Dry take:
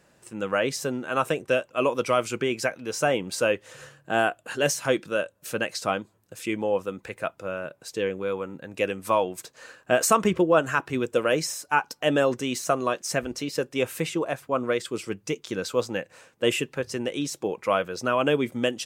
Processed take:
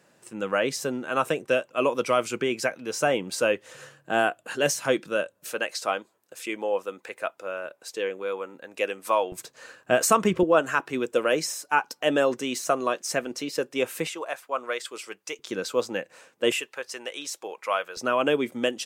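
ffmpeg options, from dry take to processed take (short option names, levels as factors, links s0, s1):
-af "asetnsamples=n=441:p=0,asendcmd='5.49 highpass f 400;9.32 highpass f 95;10.43 highpass f 220;14.07 highpass f 670;15.39 highpass f 210;16.52 highpass f 710;17.97 highpass f 220',highpass=150"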